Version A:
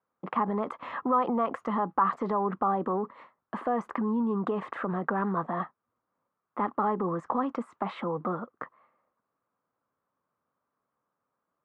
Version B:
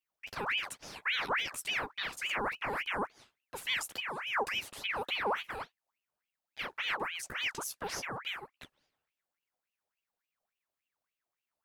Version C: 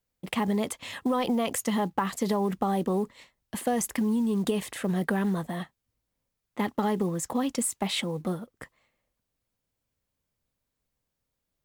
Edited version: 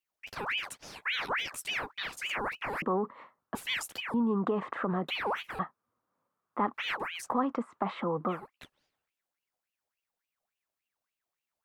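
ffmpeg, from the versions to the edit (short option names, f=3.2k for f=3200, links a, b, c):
-filter_complex "[0:a]asplit=4[a][b][c][d];[1:a]asplit=5[e][f][g][h][i];[e]atrim=end=2.822[j];[a]atrim=start=2.818:end=3.552[k];[f]atrim=start=3.548:end=4.142[l];[b]atrim=start=4.138:end=5.082[m];[g]atrim=start=5.078:end=5.592[n];[c]atrim=start=5.588:end=6.742[o];[h]atrim=start=6.738:end=7.36[p];[d]atrim=start=7.2:end=8.44[q];[i]atrim=start=8.28[r];[j][k]acrossfade=d=0.004:c1=hsin:c2=hsin[s];[s][l]acrossfade=d=0.004:c1=hsin:c2=hsin[t];[t][m]acrossfade=d=0.004:c1=hsin:c2=hsin[u];[u][n]acrossfade=d=0.004:c1=hsin:c2=hsin[v];[v][o]acrossfade=d=0.004:c1=hsin:c2=hsin[w];[w][p]acrossfade=d=0.004:c1=hsin:c2=hsin[x];[x][q]acrossfade=d=0.16:c1=tri:c2=tri[y];[y][r]acrossfade=d=0.16:c1=tri:c2=tri"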